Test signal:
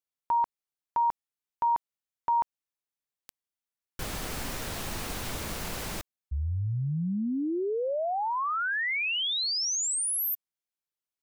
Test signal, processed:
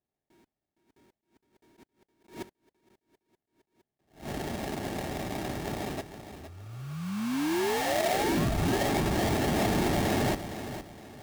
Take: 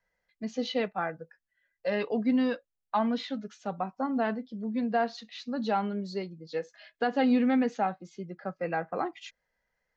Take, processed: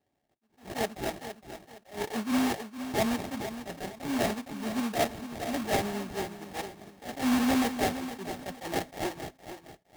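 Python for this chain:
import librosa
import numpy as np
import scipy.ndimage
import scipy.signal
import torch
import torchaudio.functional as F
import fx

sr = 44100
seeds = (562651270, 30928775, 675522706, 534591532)

p1 = scipy.signal.sosfilt(scipy.signal.butter(2, 280.0, 'highpass', fs=sr, output='sos'), x)
p2 = np.clip(p1, -10.0 ** (-26.0 / 20.0), 10.0 ** (-26.0 / 20.0))
p3 = p1 + (p2 * librosa.db_to_amplitude(-6.0))
p4 = fx.sample_hold(p3, sr, seeds[0], rate_hz=1300.0, jitter_pct=20)
p5 = fx.notch_comb(p4, sr, f0_hz=500.0)
p6 = p5 + fx.echo_feedback(p5, sr, ms=463, feedback_pct=33, wet_db=-11.0, dry=0)
y = fx.attack_slew(p6, sr, db_per_s=180.0)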